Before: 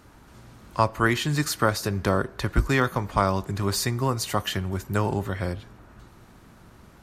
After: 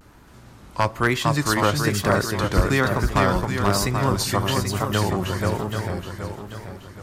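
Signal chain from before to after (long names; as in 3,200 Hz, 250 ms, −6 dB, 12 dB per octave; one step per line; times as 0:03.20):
feedback echo with a long and a short gap by turns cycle 780 ms, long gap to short 1.5 to 1, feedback 35%, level −3 dB
wave folding −9 dBFS
pitch vibrato 1.1 Hz 87 cents
level +1.5 dB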